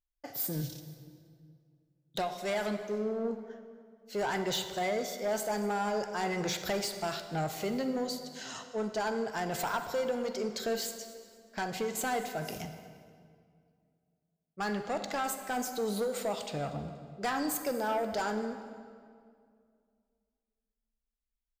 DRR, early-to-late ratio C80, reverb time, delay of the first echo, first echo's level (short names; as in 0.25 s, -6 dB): 7.5 dB, 9.5 dB, 2.2 s, 0.238 s, -20.0 dB